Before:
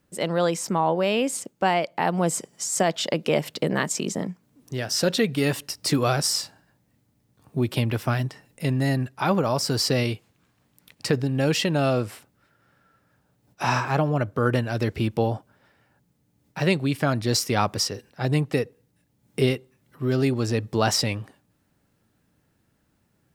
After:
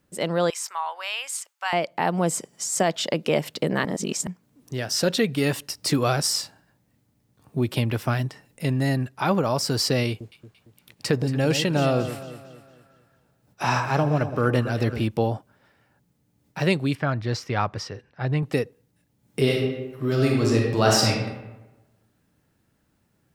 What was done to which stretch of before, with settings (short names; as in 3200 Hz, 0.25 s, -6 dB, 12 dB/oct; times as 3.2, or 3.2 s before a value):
0.5–1.73 HPF 990 Hz 24 dB/oct
3.85–4.27 reverse
10.09–15.04 echo with dull and thin repeats by turns 0.114 s, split 970 Hz, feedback 65%, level -9 dB
16.95–18.43 EQ curve 140 Hz 0 dB, 210 Hz -6 dB, 1700 Hz 0 dB, 6000 Hz -12 dB, 9900 Hz -23 dB
19.41–21.1 reverb throw, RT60 1.1 s, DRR -1 dB